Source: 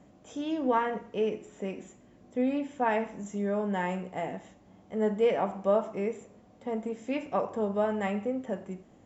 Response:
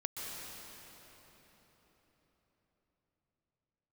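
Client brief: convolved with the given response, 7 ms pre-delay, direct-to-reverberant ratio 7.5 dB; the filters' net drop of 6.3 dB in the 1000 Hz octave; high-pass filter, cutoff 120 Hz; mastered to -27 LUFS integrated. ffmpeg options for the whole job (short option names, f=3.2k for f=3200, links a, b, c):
-filter_complex "[0:a]highpass=120,equalizer=f=1k:t=o:g=-8.5,asplit=2[a][b];[1:a]atrim=start_sample=2205,adelay=7[c];[b][c]afir=irnorm=-1:irlink=0,volume=-9.5dB[d];[a][d]amix=inputs=2:normalize=0,volume=5.5dB"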